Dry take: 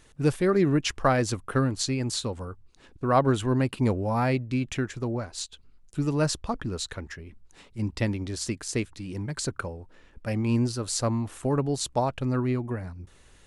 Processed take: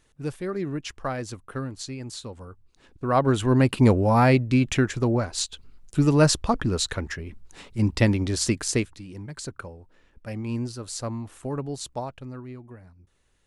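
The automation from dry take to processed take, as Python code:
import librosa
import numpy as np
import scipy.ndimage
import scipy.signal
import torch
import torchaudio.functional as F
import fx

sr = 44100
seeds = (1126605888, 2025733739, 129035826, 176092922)

y = fx.gain(x, sr, db=fx.line((2.18, -7.5), (3.2, 0.5), (3.72, 7.0), (8.68, 7.0), (9.08, -5.0), (11.9, -5.0), (12.42, -13.0)))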